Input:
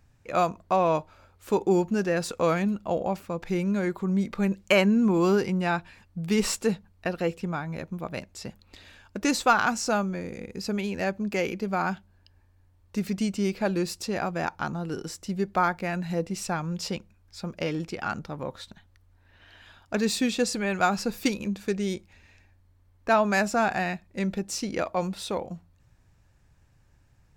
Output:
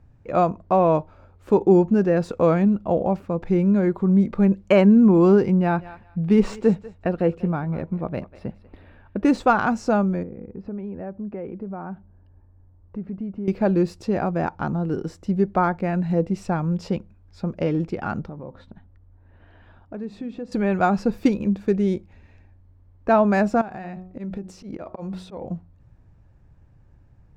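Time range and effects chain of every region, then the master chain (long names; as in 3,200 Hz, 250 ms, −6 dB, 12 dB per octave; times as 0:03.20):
0:05.59–0:09.38: low-pass that shuts in the quiet parts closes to 2,100 Hz, open at −24.5 dBFS + feedback echo with a high-pass in the loop 193 ms, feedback 21%, high-pass 650 Hz, level −15 dB + linearly interpolated sample-rate reduction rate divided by 3×
0:10.23–0:13.48: low-pass filter 1,400 Hz + downward compressor 2 to 1, threshold −44 dBFS
0:18.29–0:20.52: low-pass filter 1,600 Hz 6 dB per octave + downward compressor 2.5 to 1, threshold −42 dBFS + hum removal 65.46 Hz, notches 4
0:23.61–0:25.43: volume swells 169 ms + hum removal 184 Hz, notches 7 + downward compressor 16 to 1, threshold −34 dBFS
whole clip: low-pass filter 3,400 Hz 6 dB per octave; tilt shelving filter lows +7 dB, about 1,200 Hz; level +1.5 dB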